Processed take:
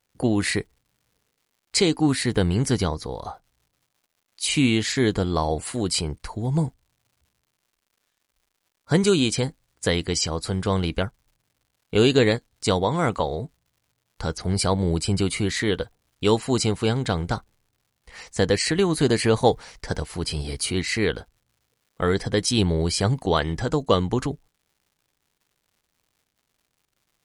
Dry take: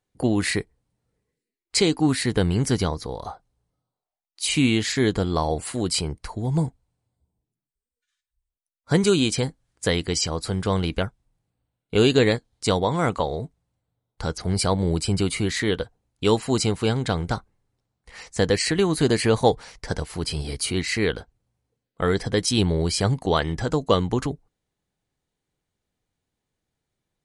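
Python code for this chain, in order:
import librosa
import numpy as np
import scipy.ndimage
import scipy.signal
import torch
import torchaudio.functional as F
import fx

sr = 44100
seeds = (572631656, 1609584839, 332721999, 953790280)

y = fx.dmg_crackle(x, sr, seeds[0], per_s=230.0, level_db=-54.0)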